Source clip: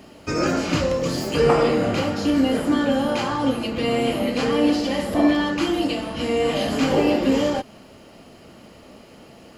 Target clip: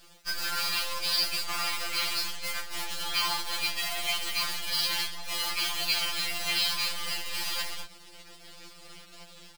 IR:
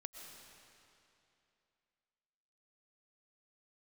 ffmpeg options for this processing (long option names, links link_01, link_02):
-filter_complex "[0:a]aresample=11025,aeval=exprs='sgn(val(0))*max(abs(val(0))-0.00708,0)':channel_layout=same,aresample=44100,asplit=2[link_01][link_02];[link_02]adelay=240,highpass=300,lowpass=3400,asoftclip=type=hard:threshold=-13dB,volume=-13dB[link_03];[link_01][link_03]amix=inputs=2:normalize=0,crystalizer=i=2.5:c=0,areverse,acompressor=threshold=-30dB:ratio=16,areverse,highpass=frequency=1000:width=0.5412,highpass=frequency=1000:width=1.3066,dynaudnorm=framelen=130:gausssize=7:maxgain=5dB,crystalizer=i=2.5:c=0,acrusher=bits=6:dc=4:mix=0:aa=0.000001,afftfilt=real='re*2.83*eq(mod(b,8),0)':imag='im*2.83*eq(mod(b,8),0)':win_size=2048:overlap=0.75,volume=4.5dB"